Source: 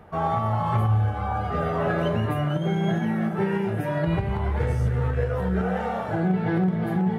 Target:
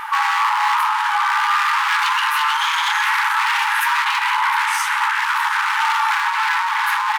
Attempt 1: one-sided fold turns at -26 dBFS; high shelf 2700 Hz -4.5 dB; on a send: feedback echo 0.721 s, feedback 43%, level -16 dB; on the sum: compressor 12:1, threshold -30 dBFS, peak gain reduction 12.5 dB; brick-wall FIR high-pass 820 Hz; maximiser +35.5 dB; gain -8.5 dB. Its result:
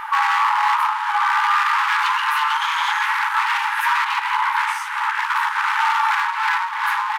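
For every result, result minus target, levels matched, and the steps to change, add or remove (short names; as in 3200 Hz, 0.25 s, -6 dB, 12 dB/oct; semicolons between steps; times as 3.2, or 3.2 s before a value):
compressor: peak gain reduction +7.5 dB; 4000 Hz band -2.5 dB
change: compressor 12:1, threshold -22 dBFS, peak gain reduction 5 dB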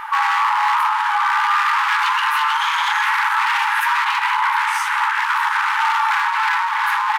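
4000 Hz band -2.5 dB
change: high shelf 2700 Hz +2.5 dB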